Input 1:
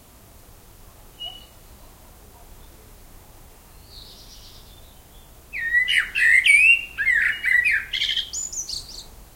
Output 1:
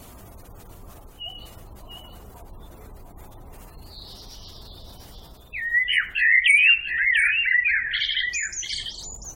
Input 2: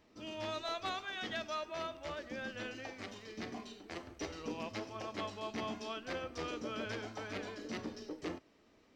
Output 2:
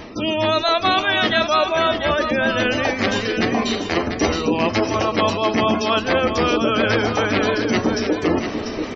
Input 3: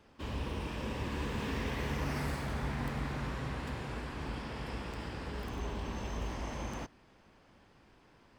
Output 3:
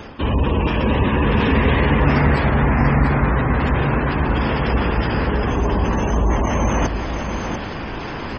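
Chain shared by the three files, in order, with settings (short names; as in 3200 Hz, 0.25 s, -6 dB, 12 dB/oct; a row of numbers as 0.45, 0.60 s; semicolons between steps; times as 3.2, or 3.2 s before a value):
spectral gate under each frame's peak -25 dB strong; reverse; upward compressor, threshold -33 dBFS; reverse; vibrato 7.8 Hz 27 cents; echo 0.692 s -7.5 dB; match loudness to -19 LUFS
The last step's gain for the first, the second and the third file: -2.0, +20.0, +19.0 dB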